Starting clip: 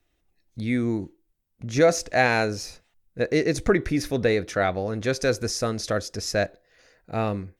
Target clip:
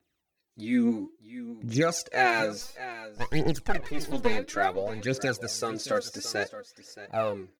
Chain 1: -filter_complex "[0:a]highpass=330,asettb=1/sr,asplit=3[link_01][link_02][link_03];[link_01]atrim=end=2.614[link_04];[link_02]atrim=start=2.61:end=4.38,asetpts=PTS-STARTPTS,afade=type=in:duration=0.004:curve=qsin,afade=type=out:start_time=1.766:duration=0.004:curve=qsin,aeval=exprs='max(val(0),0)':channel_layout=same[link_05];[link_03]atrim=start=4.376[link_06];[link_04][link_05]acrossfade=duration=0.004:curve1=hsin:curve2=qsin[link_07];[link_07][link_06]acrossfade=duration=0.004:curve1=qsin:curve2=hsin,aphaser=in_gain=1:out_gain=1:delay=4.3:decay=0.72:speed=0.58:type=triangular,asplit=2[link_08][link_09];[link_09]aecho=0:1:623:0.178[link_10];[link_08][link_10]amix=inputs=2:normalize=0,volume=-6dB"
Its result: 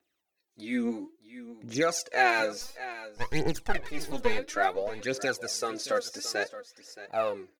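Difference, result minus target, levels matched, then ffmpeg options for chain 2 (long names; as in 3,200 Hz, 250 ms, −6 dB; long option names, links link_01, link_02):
125 Hz band −6.5 dB
-filter_complex "[0:a]highpass=150,asettb=1/sr,asplit=3[link_01][link_02][link_03];[link_01]atrim=end=2.614[link_04];[link_02]atrim=start=2.61:end=4.38,asetpts=PTS-STARTPTS,afade=type=in:duration=0.004:curve=qsin,afade=type=out:start_time=1.766:duration=0.004:curve=qsin,aeval=exprs='max(val(0),0)':channel_layout=same[link_05];[link_03]atrim=start=4.376[link_06];[link_04][link_05]acrossfade=duration=0.004:curve1=hsin:curve2=qsin[link_07];[link_07][link_06]acrossfade=duration=0.004:curve1=qsin:curve2=hsin,aphaser=in_gain=1:out_gain=1:delay=4.3:decay=0.72:speed=0.58:type=triangular,asplit=2[link_08][link_09];[link_09]aecho=0:1:623:0.178[link_10];[link_08][link_10]amix=inputs=2:normalize=0,volume=-6dB"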